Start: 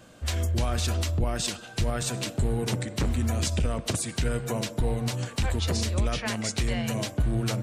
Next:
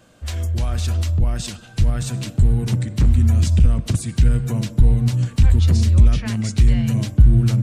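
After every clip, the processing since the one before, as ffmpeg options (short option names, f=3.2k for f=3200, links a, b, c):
-af "asubboost=boost=7:cutoff=210,volume=-1dB"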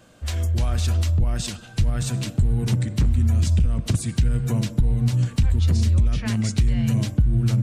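-af "acompressor=threshold=-15dB:ratio=6"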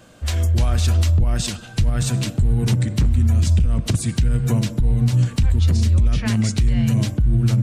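-af "alimiter=limit=-14dB:level=0:latency=1:release=97,volume=4.5dB"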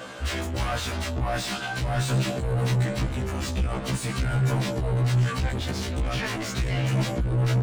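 -filter_complex "[0:a]asplit=2[a][b];[b]highpass=f=720:p=1,volume=32dB,asoftclip=type=tanh:threshold=-9dB[c];[a][c]amix=inputs=2:normalize=0,lowpass=f=2.2k:p=1,volume=-6dB,afftfilt=real='re*1.73*eq(mod(b,3),0)':imag='im*1.73*eq(mod(b,3),0)':win_size=2048:overlap=0.75,volume=-7dB"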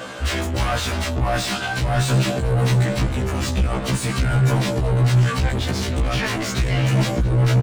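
-af "aecho=1:1:683:0.119,volume=6dB"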